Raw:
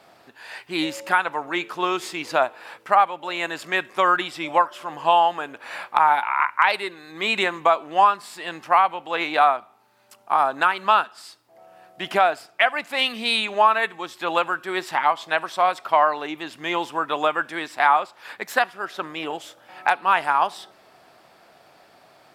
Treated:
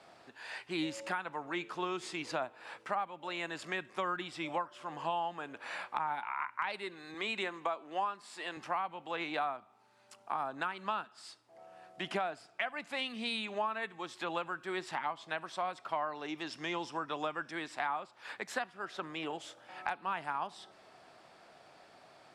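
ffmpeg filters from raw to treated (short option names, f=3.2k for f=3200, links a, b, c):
-filter_complex "[0:a]asettb=1/sr,asplit=3[a][b][c];[a]atrim=end=7.144[d];[b]atrim=start=7.14:end=8.57,asetpts=PTS-STARTPTS,afade=t=in:d=0.004:c=qsin,afade=t=out:st=1.426:d=0.004:c=qsin,highpass=260[e];[c]atrim=start=8.566[f];[d][e]acrossfade=d=0.004:c1=hsin:c2=qsin[g];[g][f]acrossfade=d=0.004:c1=qsin:c2=hsin,asettb=1/sr,asplit=3[h][i][j];[h]atrim=end=16.154[k];[i]atrim=start=16.15:end=17.51,asetpts=PTS-STARTPTS,afade=t=in:d=0.004:c=qsin,afade=t=out:st=1.356:d=0.004:c=qsin,equalizer=f=5.4k:t=o:w=0.29:g=13[l];[j]atrim=start=17.506[m];[k][l]acrossfade=d=0.004:c1=hsin:c2=qsin[n];[n][m]acrossfade=d=0.004:c1=qsin:c2=hsin,acrossover=split=260[o][p];[p]acompressor=threshold=-33dB:ratio=2.5[q];[o][q]amix=inputs=2:normalize=0,lowpass=f=9.7k:w=0.5412,lowpass=f=9.7k:w=1.3066,volume=-5.5dB"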